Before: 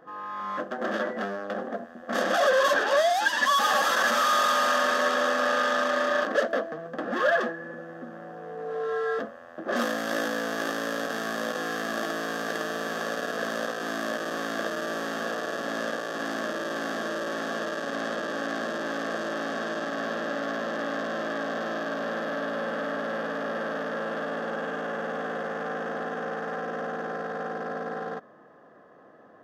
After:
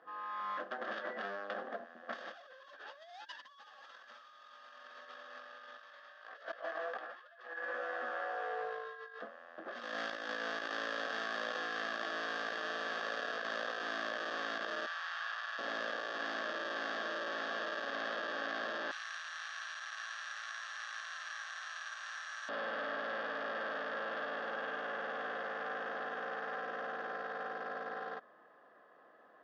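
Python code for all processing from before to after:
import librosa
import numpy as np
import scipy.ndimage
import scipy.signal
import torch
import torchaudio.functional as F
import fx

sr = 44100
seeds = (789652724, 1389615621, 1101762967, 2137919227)

y = fx.chain(x, sr, fx.highpass(hz=610.0, slope=12),
    fx.doubler(ms=16.0, db=-4),
    fx.env_flatten(amount_pct=50), at=(5.78, 9.22))
y = fx.chain(y, sr, fx.highpass(hz=960.0, slope=24),
    fx.high_shelf(hz=4700.0, db=-5.0), at=(14.86, 15.59))
y = fx.chain(y, sr, fx.resample_bad(factor=6, down='none', up='hold'),
    fx.bessel_highpass(hz=1600.0, order=6), at=(18.91, 22.49))
y = fx.highpass(y, sr, hz=1100.0, slope=6)
y = fx.over_compress(y, sr, threshold_db=-35.0, ratio=-0.5)
y = scipy.signal.sosfilt(scipy.signal.butter(4, 4700.0, 'lowpass', fs=sr, output='sos'), y)
y = F.gain(torch.from_numpy(y), -6.0).numpy()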